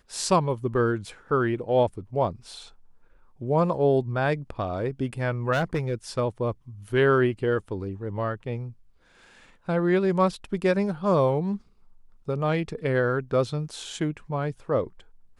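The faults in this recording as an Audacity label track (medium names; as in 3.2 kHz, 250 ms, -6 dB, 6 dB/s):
5.520000	5.940000	clipped -20 dBFS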